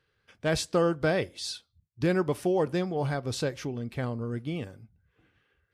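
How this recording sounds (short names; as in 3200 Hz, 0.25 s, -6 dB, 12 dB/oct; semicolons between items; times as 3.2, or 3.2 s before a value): noise floor -75 dBFS; spectral tilt -5.5 dB/oct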